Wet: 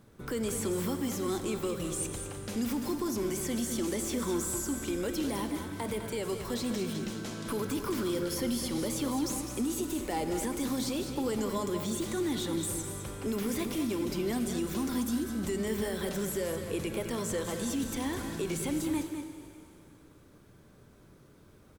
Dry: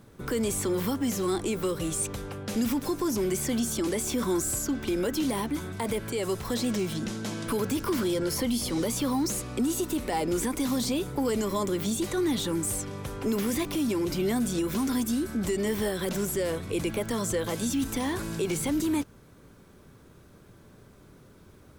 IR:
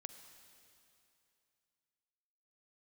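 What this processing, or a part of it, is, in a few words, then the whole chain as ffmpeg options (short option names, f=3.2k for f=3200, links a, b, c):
cave: -filter_complex "[0:a]aecho=1:1:206:0.376[a];[1:a]atrim=start_sample=2205[b];[a][b]afir=irnorm=-1:irlink=0"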